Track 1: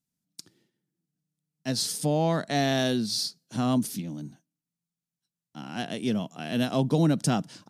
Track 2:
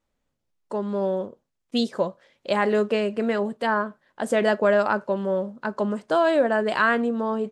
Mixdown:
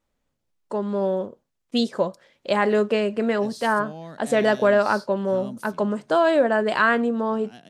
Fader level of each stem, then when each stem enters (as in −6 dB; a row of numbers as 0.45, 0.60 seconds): −13.5, +1.5 decibels; 1.75, 0.00 seconds